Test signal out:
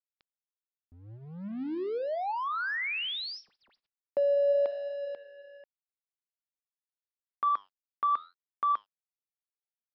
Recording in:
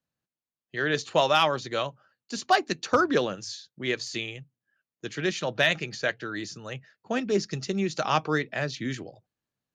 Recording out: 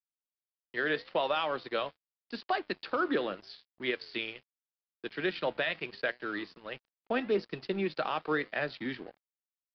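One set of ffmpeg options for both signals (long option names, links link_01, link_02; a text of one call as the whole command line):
ffmpeg -i in.wav -filter_complex "[0:a]acrossover=split=210 4200:gain=0.158 1 0.251[link_01][link_02][link_03];[link_01][link_02][link_03]amix=inputs=3:normalize=0,alimiter=limit=-18.5dB:level=0:latency=1:release=165,flanger=delay=8:depth=6:regen=90:speed=0.81:shape=triangular,aeval=exprs='sgn(val(0))*max(abs(val(0))-0.00237,0)':channel_layout=same,aresample=11025,aresample=44100,volume=4dB" out.wav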